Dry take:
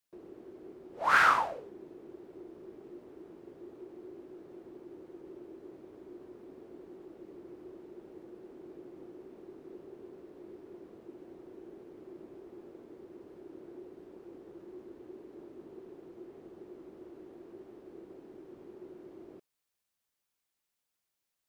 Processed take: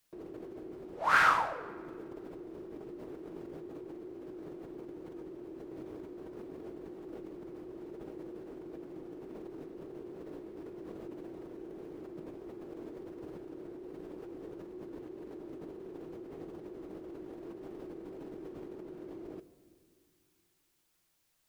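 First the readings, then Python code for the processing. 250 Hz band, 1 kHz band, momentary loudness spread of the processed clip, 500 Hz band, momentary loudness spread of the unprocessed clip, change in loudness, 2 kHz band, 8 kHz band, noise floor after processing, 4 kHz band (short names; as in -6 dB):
+4.0 dB, -1.0 dB, 1 LU, +2.5 dB, 6 LU, -9.0 dB, -1.5 dB, n/a, -75 dBFS, -1.0 dB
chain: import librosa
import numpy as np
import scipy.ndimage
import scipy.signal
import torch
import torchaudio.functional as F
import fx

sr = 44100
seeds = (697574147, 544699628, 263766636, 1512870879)

p1 = fx.low_shelf(x, sr, hz=68.0, db=8.0)
p2 = fx.over_compress(p1, sr, threshold_db=-53.0, ratio=-0.5)
p3 = p1 + F.gain(torch.from_numpy(p2), -1.5).numpy()
p4 = fx.room_shoebox(p3, sr, seeds[0], volume_m3=3800.0, walls='mixed', distance_m=0.56)
y = F.gain(torch.from_numpy(p4), -1.5).numpy()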